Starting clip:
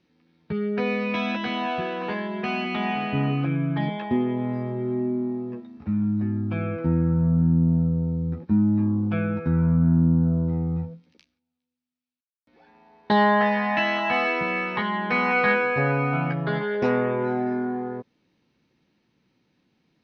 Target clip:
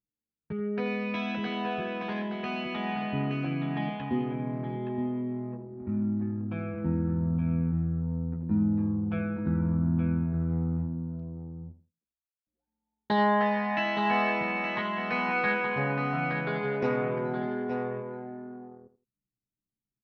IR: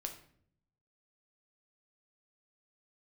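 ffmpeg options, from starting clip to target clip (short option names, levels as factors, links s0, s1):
-filter_complex "[0:a]asplit=2[s0][s1];[s1]aecho=0:1:870:0.447[s2];[s0][s2]amix=inputs=2:normalize=0,anlmdn=6.31,asplit=2[s3][s4];[s4]aecho=0:1:82|164:0.211|0.0423[s5];[s3][s5]amix=inputs=2:normalize=0,volume=0.473"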